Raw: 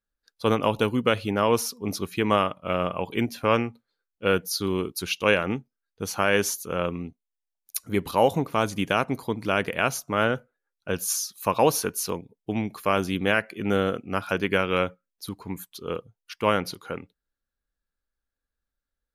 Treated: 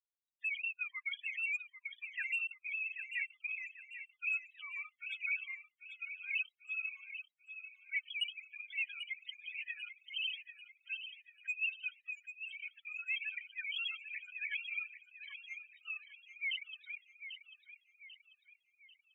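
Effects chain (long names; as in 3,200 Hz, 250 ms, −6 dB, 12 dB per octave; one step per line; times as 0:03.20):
three sine waves on the formant tracks
gate on every frequency bin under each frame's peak −20 dB weak
inverse Chebyshev band-stop filter 230–650 Hz, stop band 60 dB
first difference
leveller curve on the samples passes 3
spectral peaks only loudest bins 8
on a send: delay with a high-pass on its return 792 ms, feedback 43%, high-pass 1,900 Hz, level −9 dB
on the sum: level +8 dB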